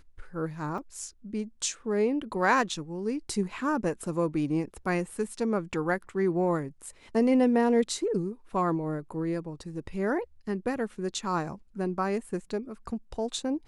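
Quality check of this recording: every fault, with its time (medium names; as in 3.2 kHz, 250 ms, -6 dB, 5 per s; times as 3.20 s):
0.78 s: dropout 3 ms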